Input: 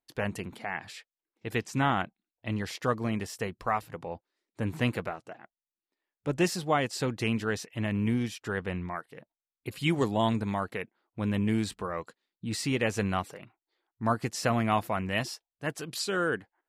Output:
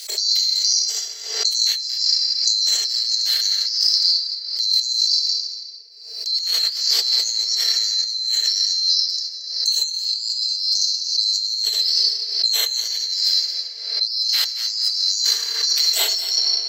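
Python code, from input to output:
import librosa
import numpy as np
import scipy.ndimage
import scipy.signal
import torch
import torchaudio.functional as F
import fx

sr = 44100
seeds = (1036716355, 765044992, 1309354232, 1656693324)

y = fx.band_swap(x, sr, width_hz=4000)
y = fx.graphic_eq(y, sr, hz=(500, 1000, 2000, 4000, 8000), db=(-4, -12, 4, 6, 6))
y = fx.room_shoebox(y, sr, seeds[0], volume_m3=120.0, walls='hard', distance_m=0.58)
y = fx.transient(y, sr, attack_db=0, sustain_db=-7)
y = fx.over_compress(y, sr, threshold_db=-27.0, ratio=-1.0)
y = scipy.signal.sosfilt(scipy.signal.butter(16, 380.0, 'highpass', fs=sr, output='sos'), y)
y = fx.peak_eq(y, sr, hz=1700.0, db=-4.5, octaves=2.3)
y = y + 0.41 * np.pad(y, (int(4.4 * sr / 1000.0), 0))[:len(y)]
y = y + 10.0 ** (-14.5 / 20.0) * np.pad(y, (int(226 * sr / 1000.0), 0))[:len(y)]
y = fx.pre_swell(y, sr, db_per_s=64.0)
y = y * librosa.db_to_amplitude(6.5)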